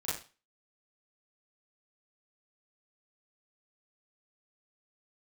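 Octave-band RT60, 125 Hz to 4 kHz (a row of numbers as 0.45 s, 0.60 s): 0.35 s, 0.30 s, 0.35 s, 0.35 s, 0.35 s, 0.35 s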